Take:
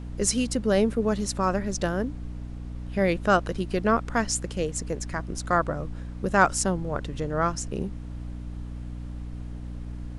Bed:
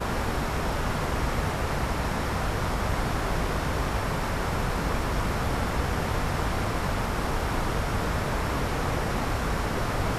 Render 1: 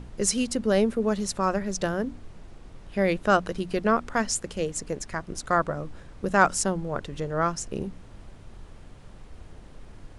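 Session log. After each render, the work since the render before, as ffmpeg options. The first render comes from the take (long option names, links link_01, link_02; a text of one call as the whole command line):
ffmpeg -i in.wav -af "bandreject=frequency=60:width_type=h:width=6,bandreject=frequency=120:width_type=h:width=6,bandreject=frequency=180:width_type=h:width=6,bandreject=frequency=240:width_type=h:width=6,bandreject=frequency=300:width_type=h:width=6" out.wav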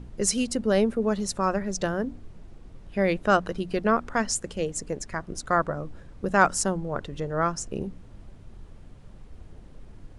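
ffmpeg -i in.wav -af "afftdn=noise_reduction=6:noise_floor=-48" out.wav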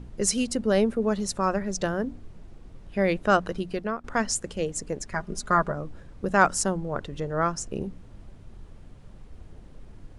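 ffmpeg -i in.wav -filter_complex "[0:a]asettb=1/sr,asplit=3[link_01][link_02][link_03];[link_01]atrim=end=5.144[link_04];[link_02]atrim=start=5.14:end=5.72,asetpts=PTS-STARTPTS,afade=type=in:duration=0.004:curve=qsin,afade=type=out:start_time=0.576:duration=0.004:curve=qsin,aecho=1:1:4.9:0.65,atrim=end_sample=25578[link_05];[link_03]atrim=start=5.716[link_06];[link_04][link_05]acrossfade=duration=0.004:curve1=hsin:curve2=qsin[link_07];[link_07][link_06]acrossfade=duration=0.004:curve1=qsin:curve2=hsin,asplit=2[link_08][link_09];[link_08]atrim=end=4.04,asetpts=PTS-STARTPTS,afade=type=out:start_time=3.59:duration=0.45:silence=0.16788[link_10];[link_09]atrim=start=4.04,asetpts=PTS-STARTPTS,afade=type=in:duration=0.004:curve=hsin:silence=0.16788[link_11];[link_10][link_11]concat=n=2:v=0:a=1" out.wav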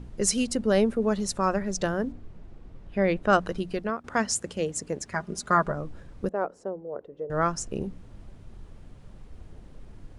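ffmpeg -i in.wav -filter_complex "[0:a]asettb=1/sr,asplit=3[link_01][link_02][link_03];[link_01]atrim=end=2.124[link_04];[link_02]atrim=start=2.12:end=3.33,asetpts=PTS-STARTPTS,afade=type=in:duration=0.004:curve=qsin,afade=type=out:start_time=1.206:duration=0.004:curve=qsin,lowpass=frequency=3000:poles=1[link_05];[link_03]atrim=start=3.326[link_06];[link_04][link_05]acrossfade=duration=0.004:curve1=hsin:curve2=qsin[link_07];[link_07][link_06]acrossfade=duration=0.004:curve1=qsin:curve2=hsin,asettb=1/sr,asplit=3[link_08][link_09][link_10];[link_08]atrim=end=3.894[link_11];[link_09]atrim=start=3.89:end=5.66,asetpts=PTS-STARTPTS,afade=type=in:duration=0.004:curve=qsin,afade=type=out:start_time=1.766:duration=0.004:curve=qsin,highpass=78[link_12];[link_10]atrim=start=5.656[link_13];[link_11][link_12]acrossfade=duration=0.004:curve1=hsin:curve2=qsin[link_14];[link_14][link_13]acrossfade=duration=0.004:curve1=qsin:curve2=hsin,asettb=1/sr,asplit=3[link_15][link_16][link_17];[link_15]atrim=end=6.294[link_18];[link_16]atrim=start=6.29:end=7.3,asetpts=PTS-STARTPTS,afade=type=in:duration=0.004:curve=qsin,afade=type=out:start_time=1.006:duration=0.004:curve=qsin,bandpass=frequency=480:width_type=q:width=2.8[link_19];[link_17]atrim=start=7.296[link_20];[link_18][link_19]acrossfade=duration=0.004:curve1=hsin:curve2=qsin[link_21];[link_21][link_20]acrossfade=duration=0.004:curve1=qsin:curve2=hsin" out.wav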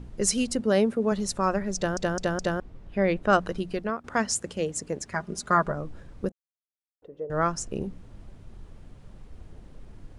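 ffmpeg -i in.wav -filter_complex "[0:a]asettb=1/sr,asplit=3[link_01][link_02][link_03];[link_01]atrim=end=0.604[link_04];[link_02]atrim=start=0.6:end=1.12,asetpts=PTS-STARTPTS,afade=type=in:duration=0.004:curve=qsin,afade=type=out:start_time=0.516:duration=0.004:curve=qsin,highpass=100[link_05];[link_03]atrim=start=1.116[link_06];[link_04][link_05]acrossfade=duration=0.004:curve1=hsin:curve2=qsin[link_07];[link_07][link_06]acrossfade=duration=0.004:curve1=qsin:curve2=hsin,asplit=7[link_08][link_09][link_10][link_11][link_12][link_13][link_14];[link_08]atrim=end=1.972[link_15];[link_09]atrim=start=1.758:end=1.972[link_16];[link_10]atrim=start=1.758:end=1.972[link_17];[link_11]atrim=start=1.758:end=1.972[link_18];[link_12]atrim=start=2.598:end=6.32,asetpts=PTS-STARTPTS,afade=type=out:start_time=3.718:duration=0.004:curve=hsin[link_19];[link_13]atrim=start=6.32:end=7.02,asetpts=PTS-STARTPTS,volume=0[link_20];[link_14]atrim=start=7.02,asetpts=PTS-STARTPTS,afade=type=in:duration=0.004:curve=hsin[link_21];[link_15][link_16]acrossfade=duration=0.004:curve1=hsin:curve2=hsin[link_22];[link_22][link_17]acrossfade=duration=0.004:curve1=hsin:curve2=hsin[link_23];[link_23][link_18]acrossfade=duration=0.004:curve1=hsin:curve2=hsin[link_24];[link_19][link_20][link_21]concat=n=3:v=0:a=1[link_25];[link_24][link_25]acrossfade=duration=0.004:curve1=hsin:curve2=hsin" out.wav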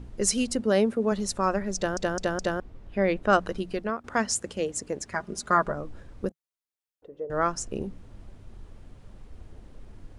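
ffmpeg -i in.wav -af "equalizer=frequency=160:width_type=o:width=0.25:gain=-8" out.wav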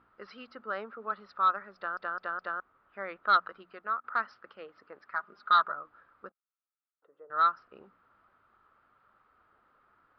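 ffmpeg -i in.wav -af "bandpass=frequency=1300:width_type=q:width=7.9:csg=0,aresample=11025,aeval=exprs='0.141*sin(PI/2*1.58*val(0)/0.141)':channel_layout=same,aresample=44100" out.wav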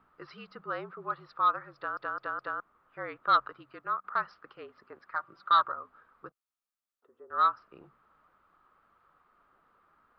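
ffmpeg -i in.wav -af "afreqshift=-48" out.wav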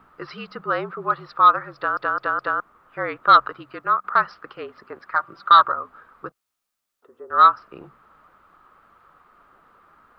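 ffmpeg -i in.wav -af "volume=12dB,alimiter=limit=-3dB:level=0:latency=1" out.wav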